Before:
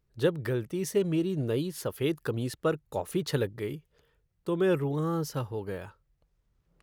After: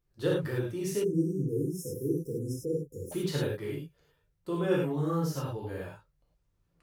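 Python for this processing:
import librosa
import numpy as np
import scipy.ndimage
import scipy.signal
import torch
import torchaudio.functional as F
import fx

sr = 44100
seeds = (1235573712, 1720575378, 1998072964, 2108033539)

y = fx.rev_gated(x, sr, seeds[0], gate_ms=130, shape='flat', drr_db=-5.0)
y = fx.spec_erase(y, sr, start_s=1.04, length_s=2.08, low_hz=520.0, high_hz=5100.0)
y = F.gain(torch.from_numpy(y), -7.5).numpy()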